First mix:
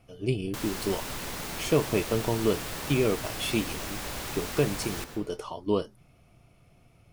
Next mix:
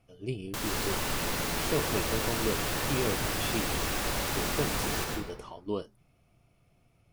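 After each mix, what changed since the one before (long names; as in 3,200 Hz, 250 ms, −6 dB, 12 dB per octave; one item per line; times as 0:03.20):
speech −7.0 dB
background: send +11.0 dB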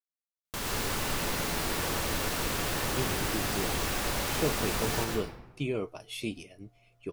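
speech: entry +2.70 s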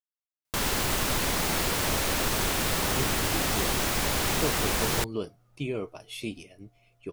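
background +10.5 dB
reverb: off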